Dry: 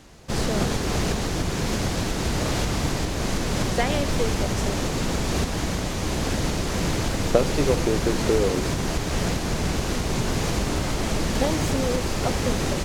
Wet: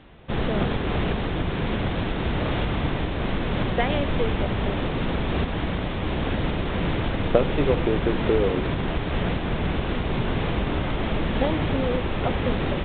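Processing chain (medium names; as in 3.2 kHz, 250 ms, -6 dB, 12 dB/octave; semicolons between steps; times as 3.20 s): resampled via 8 kHz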